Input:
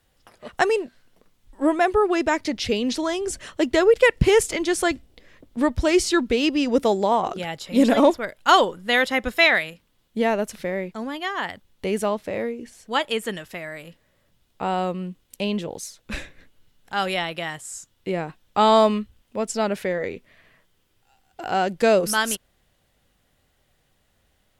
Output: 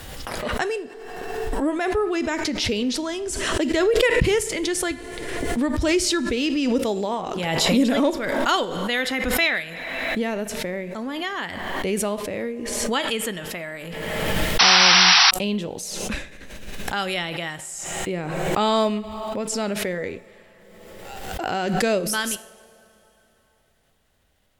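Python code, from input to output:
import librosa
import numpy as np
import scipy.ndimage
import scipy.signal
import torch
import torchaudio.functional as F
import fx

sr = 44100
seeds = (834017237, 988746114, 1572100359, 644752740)

p1 = fx.rev_double_slope(x, sr, seeds[0], early_s=0.56, late_s=3.3, knee_db=-17, drr_db=13.0)
p2 = fx.rider(p1, sr, range_db=4, speed_s=2.0)
p3 = p1 + F.gain(torch.from_numpy(p2), 1.0).numpy()
p4 = fx.dynamic_eq(p3, sr, hz=830.0, q=0.86, threshold_db=-24.0, ratio=4.0, max_db=-6)
p5 = fx.spec_paint(p4, sr, seeds[1], shape='noise', start_s=14.59, length_s=0.72, low_hz=690.0, high_hz=5900.0, level_db=-6.0)
p6 = fx.pre_swell(p5, sr, db_per_s=28.0)
y = F.gain(torch.from_numpy(p6), -8.0).numpy()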